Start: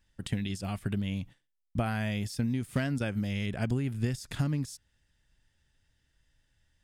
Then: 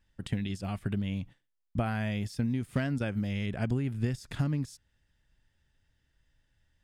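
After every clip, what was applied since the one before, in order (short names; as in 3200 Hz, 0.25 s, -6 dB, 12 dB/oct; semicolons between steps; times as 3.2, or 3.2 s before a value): high shelf 4300 Hz -7.5 dB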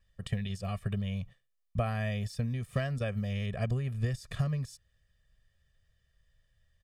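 comb 1.7 ms, depth 96%; gain -3.5 dB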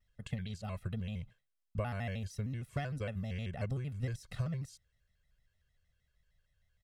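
shaped vibrato square 6.5 Hz, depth 160 cents; gain -5.5 dB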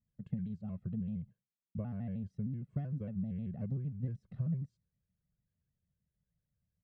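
band-pass 190 Hz, Q 2.2; gain +6 dB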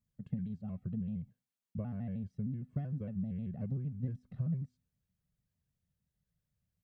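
resonator 250 Hz, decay 0.42 s, harmonics odd, mix 50%; gain +6 dB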